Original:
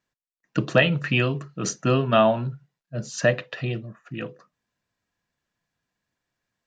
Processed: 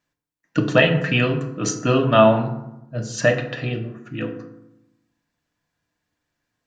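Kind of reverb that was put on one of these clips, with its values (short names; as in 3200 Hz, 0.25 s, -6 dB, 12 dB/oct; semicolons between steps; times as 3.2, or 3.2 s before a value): FDN reverb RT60 0.87 s, low-frequency decay 1.35×, high-frequency decay 0.5×, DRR 3.5 dB; gain +2 dB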